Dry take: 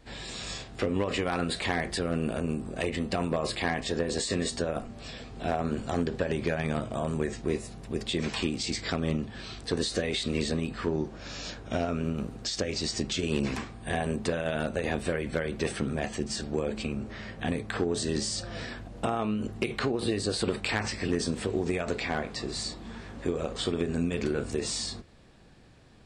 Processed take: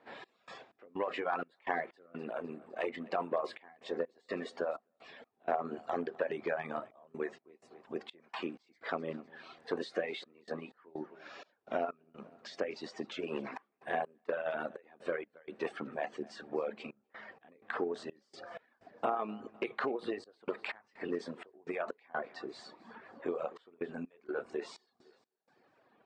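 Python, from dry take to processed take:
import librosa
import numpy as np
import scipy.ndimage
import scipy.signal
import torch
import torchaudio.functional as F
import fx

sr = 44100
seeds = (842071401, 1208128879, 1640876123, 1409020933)

y = scipy.signal.sosfilt(scipy.signal.butter(2, 210.0, 'highpass', fs=sr, output='sos'), x)
y = fx.low_shelf(y, sr, hz=300.0, db=-11.0)
y = fx.dereverb_blind(y, sr, rt60_s=1.7)
y = scipy.signal.sosfilt(scipy.signal.butter(2, 1200.0, 'lowpass', fs=sr, output='sos'), y)
y = fx.tilt_eq(y, sr, slope=2.0)
y = fx.echo_feedback(y, sr, ms=254, feedback_pct=53, wet_db=-22.0)
y = fx.step_gate(y, sr, bpm=63, pattern='x.x.xx.x.xxxxx', floor_db=-24.0, edge_ms=4.5)
y = F.gain(torch.from_numpy(y), 2.5).numpy()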